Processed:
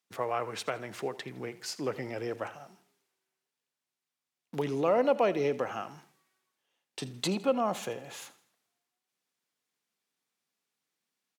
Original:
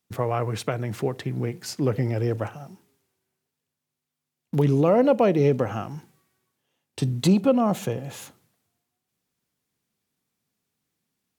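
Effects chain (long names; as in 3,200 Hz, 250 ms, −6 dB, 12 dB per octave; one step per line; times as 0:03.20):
meter weighting curve A
on a send: repeating echo 81 ms, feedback 42%, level −18 dB
on the sum: level −3.5 dB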